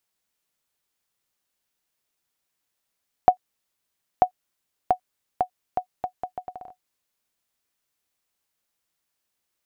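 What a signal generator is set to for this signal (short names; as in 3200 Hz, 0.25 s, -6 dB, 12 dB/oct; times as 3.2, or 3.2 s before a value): bouncing ball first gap 0.94 s, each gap 0.73, 734 Hz, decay 91 ms -3 dBFS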